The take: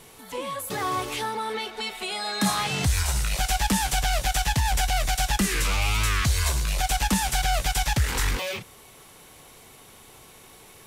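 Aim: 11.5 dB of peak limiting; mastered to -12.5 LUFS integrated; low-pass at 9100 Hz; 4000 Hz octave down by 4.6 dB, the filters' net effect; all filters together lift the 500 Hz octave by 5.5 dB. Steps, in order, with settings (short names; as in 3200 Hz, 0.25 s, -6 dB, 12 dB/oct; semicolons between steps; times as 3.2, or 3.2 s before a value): LPF 9100 Hz; bell 500 Hz +7 dB; bell 4000 Hz -6 dB; gain +20 dB; limiter -4 dBFS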